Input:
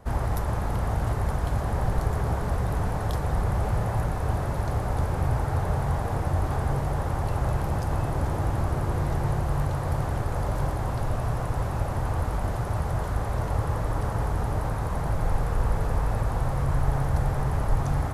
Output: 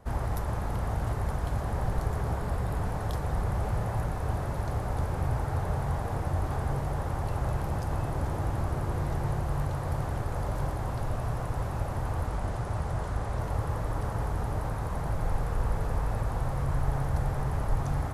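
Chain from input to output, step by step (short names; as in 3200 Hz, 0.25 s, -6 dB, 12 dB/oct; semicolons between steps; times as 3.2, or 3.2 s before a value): 2.36–2.84 notch 6000 Hz, Q 14; 12.27–13.39 LPF 11000 Hz 24 dB/oct; gain -4 dB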